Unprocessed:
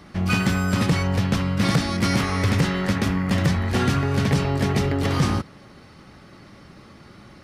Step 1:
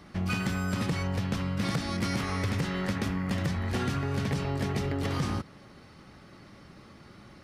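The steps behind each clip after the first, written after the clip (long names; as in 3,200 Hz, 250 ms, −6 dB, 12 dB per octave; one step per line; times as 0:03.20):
downward compressor 3 to 1, threshold −22 dBFS, peak gain reduction 6 dB
level −5 dB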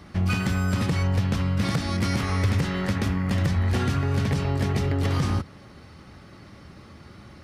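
parametric band 80 Hz +7.5 dB 0.84 octaves
level +3.5 dB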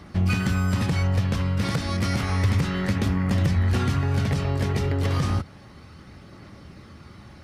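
phase shifter 0.31 Hz, delay 2.2 ms, feedback 20%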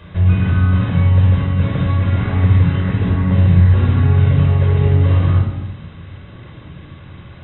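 linear delta modulator 32 kbit/s, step −42 dBFS
linear-phase brick-wall low-pass 4,000 Hz
rectangular room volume 3,400 cubic metres, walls furnished, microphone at 5.2 metres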